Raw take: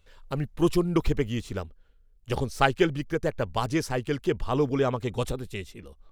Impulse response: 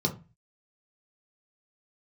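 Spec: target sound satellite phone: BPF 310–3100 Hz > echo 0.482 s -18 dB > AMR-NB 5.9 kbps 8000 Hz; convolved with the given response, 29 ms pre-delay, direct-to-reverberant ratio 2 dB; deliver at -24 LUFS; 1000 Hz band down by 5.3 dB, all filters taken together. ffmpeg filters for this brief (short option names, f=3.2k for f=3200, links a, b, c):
-filter_complex "[0:a]equalizer=f=1k:t=o:g=-7,asplit=2[a][b];[1:a]atrim=start_sample=2205,adelay=29[c];[b][c]afir=irnorm=-1:irlink=0,volume=-10dB[d];[a][d]amix=inputs=2:normalize=0,highpass=310,lowpass=3.1k,aecho=1:1:482:0.126,volume=3dB" -ar 8000 -c:a libopencore_amrnb -b:a 5900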